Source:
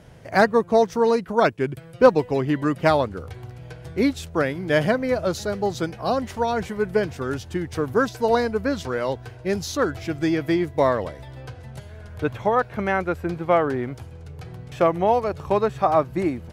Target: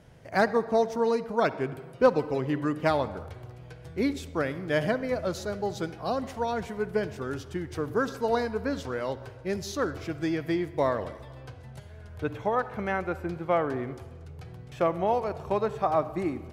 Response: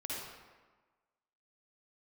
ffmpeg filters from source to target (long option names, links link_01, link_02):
-filter_complex "[0:a]asplit=2[link_01][link_02];[1:a]atrim=start_sample=2205,highshelf=frequency=9600:gain=-9[link_03];[link_02][link_03]afir=irnorm=-1:irlink=0,volume=-13.5dB[link_04];[link_01][link_04]amix=inputs=2:normalize=0,volume=-7.5dB"